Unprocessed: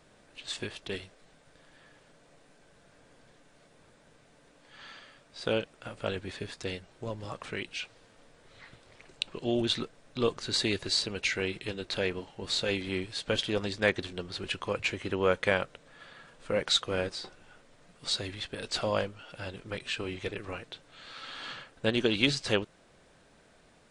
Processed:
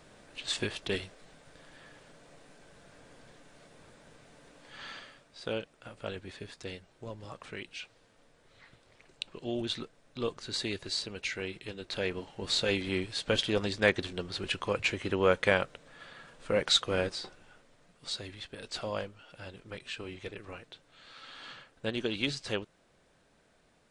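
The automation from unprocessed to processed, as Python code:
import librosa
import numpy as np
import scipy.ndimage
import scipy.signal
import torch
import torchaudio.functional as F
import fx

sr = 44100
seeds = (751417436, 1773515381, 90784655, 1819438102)

y = fx.gain(x, sr, db=fx.line((4.98, 4.0), (5.42, -5.5), (11.74, -5.5), (12.35, 1.0), (17.09, 1.0), (18.06, -6.0)))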